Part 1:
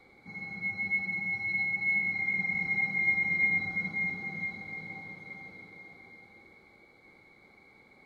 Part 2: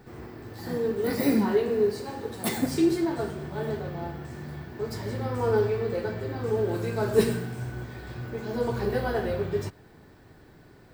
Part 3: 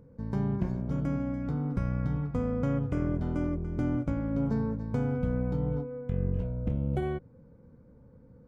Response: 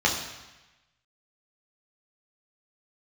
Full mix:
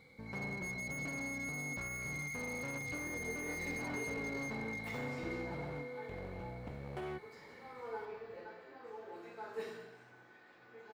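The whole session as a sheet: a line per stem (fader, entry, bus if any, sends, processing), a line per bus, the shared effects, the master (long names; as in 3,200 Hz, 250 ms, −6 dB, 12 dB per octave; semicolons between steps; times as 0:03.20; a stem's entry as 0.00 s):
−9.0 dB, 0.00 s, bus A, no send, high-shelf EQ 2,100 Hz +10.5 dB; gain into a clipping stage and back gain 32.5 dB
−19.5 dB, 2.40 s, no bus, send −8.5 dB, high-pass filter 580 Hz 12 dB per octave
−4.0 dB, 0.00 s, bus A, no send, gain into a clipping stage and back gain 29.5 dB
bus A: 0.0 dB, spectral tilt +3 dB per octave; brickwall limiter −29.5 dBFS, peak gain reduction 5 dB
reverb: on, RT60 1.1 s, pre-delay 3 ms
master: high-shelf EQ 3,600 Hz −9.5 dB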